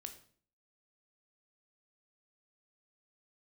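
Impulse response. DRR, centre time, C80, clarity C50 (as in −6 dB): 6.0 dB, 11 ms, 14.5 dB, 11.0 dB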